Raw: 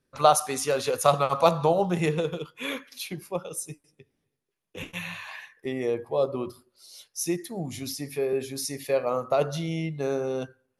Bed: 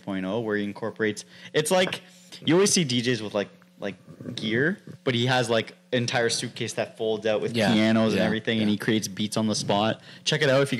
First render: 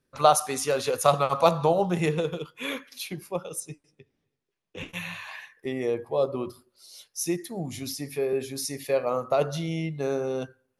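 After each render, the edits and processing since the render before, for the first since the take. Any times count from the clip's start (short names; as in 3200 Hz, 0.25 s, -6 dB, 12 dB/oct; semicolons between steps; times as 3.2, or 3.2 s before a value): 3.6–4.89 LPF 6500 Hz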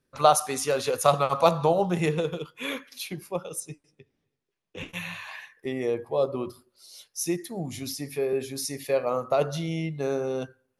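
nothing audible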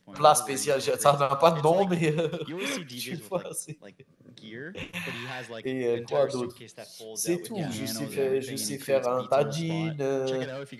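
add bed -16.5 dB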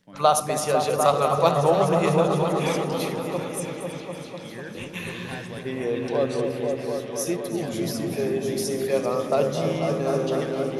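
regenerating reverse delay 0.161 s, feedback 68%, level -13 dB; repeats that get brighter 0.249 s, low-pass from 400 Hz, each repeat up 1 oct, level 0 dB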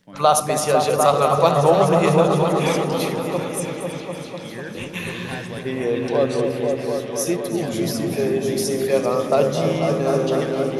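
gain +4.5 dB; limiter -3 dBFS, peak gain reduction 3 dB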